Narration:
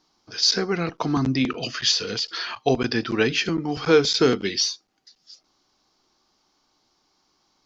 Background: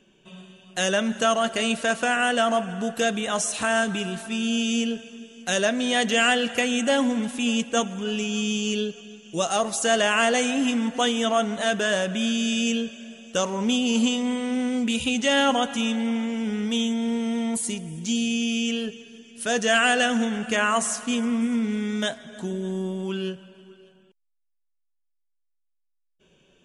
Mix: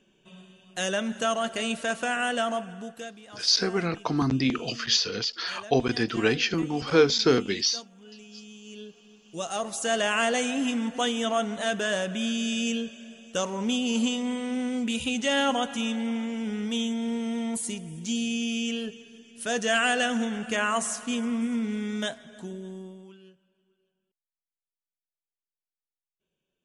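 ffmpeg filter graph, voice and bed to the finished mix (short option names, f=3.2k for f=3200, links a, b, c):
-filter_complex "[0:a]adelay=3050,volume=-2.5dB[a];[1:a]volume=12dB,afade=t=out:st=2.38:d=0.78:silence=0.158489,afade=t=in:st=8.62:d=1.49:silence=0.141254,afade=t=out:st=22.02:d=1.15:silence=0.105925[b];[a][b]amix=inputs=2:normalize=0"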